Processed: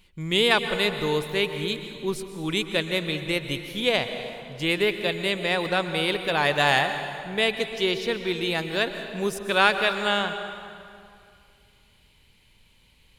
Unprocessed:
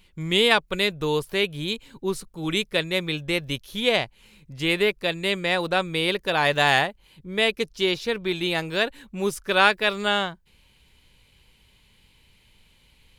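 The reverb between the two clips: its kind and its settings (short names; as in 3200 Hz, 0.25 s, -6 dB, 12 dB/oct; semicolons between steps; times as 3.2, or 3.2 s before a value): plate-style reverb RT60 2.4 s, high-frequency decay 0.7×, pre-delay 0.11 s, DRR 8 dB; gain -1.5 dB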